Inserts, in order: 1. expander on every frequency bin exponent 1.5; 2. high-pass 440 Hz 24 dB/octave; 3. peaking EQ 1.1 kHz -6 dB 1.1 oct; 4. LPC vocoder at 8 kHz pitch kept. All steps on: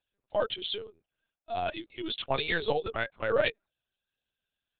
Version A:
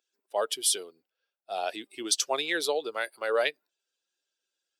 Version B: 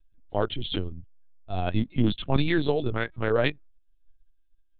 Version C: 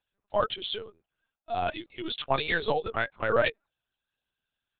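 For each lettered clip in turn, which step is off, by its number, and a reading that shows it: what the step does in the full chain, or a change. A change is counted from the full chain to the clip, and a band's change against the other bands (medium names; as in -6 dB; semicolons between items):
4, 4 kHz band +3.0 dB; 2, 125 Hz band +15.0 dB; 3, 1 kHz band +3.0 dB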